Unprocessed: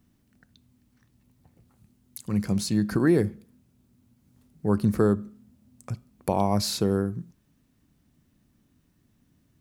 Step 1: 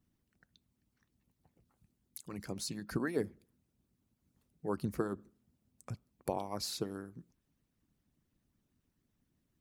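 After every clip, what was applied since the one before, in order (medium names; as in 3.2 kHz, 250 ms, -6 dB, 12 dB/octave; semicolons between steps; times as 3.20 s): harmonic-percussive split harmonic -18 dB; trim -7 dB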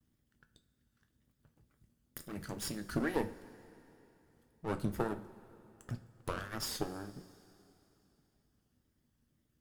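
comb filter that takes the minimum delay 0.61 ms; wow and flutter 110 cents; two-slope reverb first 0.3 s, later 3.2 s, from -18 dB, DRR 7 dB; trim +1.5 dB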